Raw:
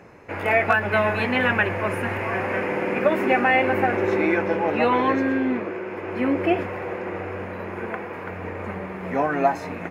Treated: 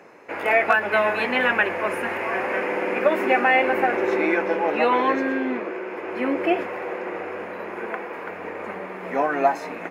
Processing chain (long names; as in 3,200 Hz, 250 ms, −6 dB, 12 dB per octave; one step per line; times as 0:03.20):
high-pass filter 300 Hz 12 dB per octave
level +1 dB